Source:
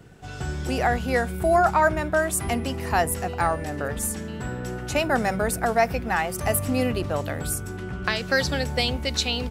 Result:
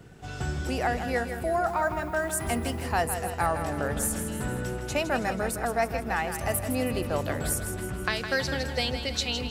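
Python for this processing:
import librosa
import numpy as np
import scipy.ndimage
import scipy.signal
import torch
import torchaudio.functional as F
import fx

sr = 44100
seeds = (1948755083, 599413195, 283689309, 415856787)

p1 = fx.rider(x, sr, range_db=4, speed_s=0.5)
p2 = fx.dmg_noise_colour(p1, sr, seeds[0], colour='violet', level_db=-56.0, at=(1.66, 2.83), fade=0.02)
p3 = p2 + fx.echo_feedback(p2, sr, ms=160, feedback_pct=54, wet_db=-9.0, dry=0)
y = F.gain(torch.from_numpy(p3), -4.5).numpy()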